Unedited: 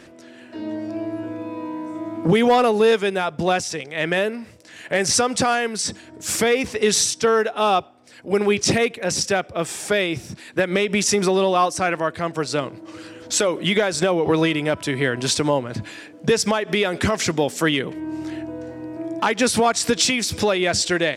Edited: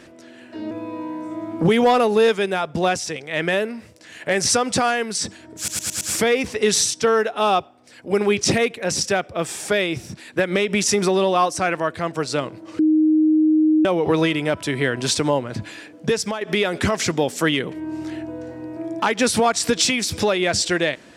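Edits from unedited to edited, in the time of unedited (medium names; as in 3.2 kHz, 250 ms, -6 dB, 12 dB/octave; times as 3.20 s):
0.71–1.35 s: delete
6.21 s: stutter 0.11 s, 5 plays
12.99–14.05 s: bleep 311 Hz -12.5 dBFS
16.12–16.61 s: fade out, to -8 dB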